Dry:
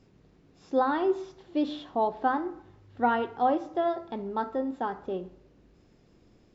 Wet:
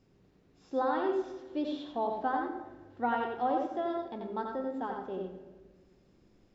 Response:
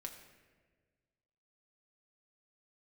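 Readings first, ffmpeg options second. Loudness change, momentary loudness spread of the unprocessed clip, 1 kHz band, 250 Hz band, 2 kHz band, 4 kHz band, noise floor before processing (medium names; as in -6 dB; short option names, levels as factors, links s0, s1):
-4.5 dB, 9 LU, -4.5 dB, -4.5 dB, -4.5 dB, -4.5 dB, -61 dBFS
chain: -filter_complex "[0:a]asplit=2[s0][s1];[1:a]atrim=start_sample=2205,adelay=88[s2];[s1][s2]afir=irnorm=-1:irlink=0,volume=1.19[s3];[s0][s3]amix=inputs=2:normalize=0,volume=0.473"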